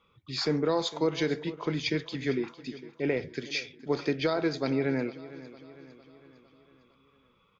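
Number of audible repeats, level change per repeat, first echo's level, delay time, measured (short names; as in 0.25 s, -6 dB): 4, -5.5 dB, -17.0 dB, 0.455 s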